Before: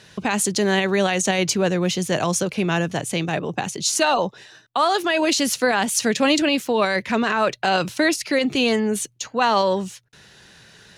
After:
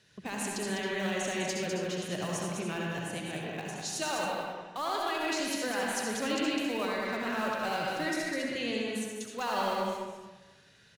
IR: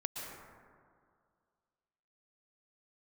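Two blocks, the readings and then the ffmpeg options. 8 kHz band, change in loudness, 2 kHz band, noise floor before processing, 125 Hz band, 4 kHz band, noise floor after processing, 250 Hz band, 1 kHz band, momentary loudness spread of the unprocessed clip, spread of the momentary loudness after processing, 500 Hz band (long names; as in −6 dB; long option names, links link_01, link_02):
−13.5 dB, −12.0 dB, −11.0 dB, −51 dBFS, −12.5 dB, −12.0 dB, −60 dBFS, −12.0 dB, −11.5 dB, 6 LU, 6 LU, −12.5 dB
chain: -filter_complex "[0:a]acrossover=split=780|1000[link_01][link_02][link_03];[link_02]acrusher=bits=4:mix=0:aa=0.000001[link_04];[link_01][link_04][link_03]amix=inputs=3:normalize=0,aecho=1:1:202:0.531[link_05];[1:a]atrim=start_sample=2205,asetrate=79380,aresample=44100[link_06];[link_05][link_06]afir=irnorm=-1:irlink=0,volume=-9dB"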